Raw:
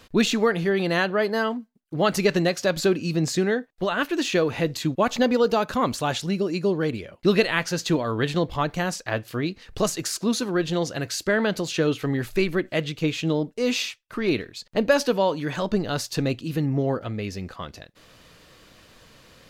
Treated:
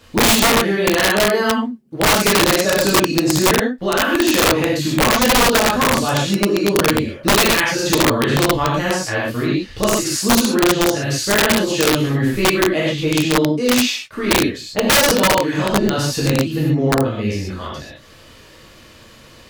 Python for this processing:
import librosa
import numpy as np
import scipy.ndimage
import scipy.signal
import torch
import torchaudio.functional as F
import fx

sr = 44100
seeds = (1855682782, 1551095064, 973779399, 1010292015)

y = fx.rev_gated(x, sr, seeds[0], gate_ms=160, shape='flat', drr_db=-7.0)
y = (np.mod(10.0 ** (7.5 / 20.0) * y + 1.0, 2.0) - 1.0) / 10.0 ** (7.5 / 20.0)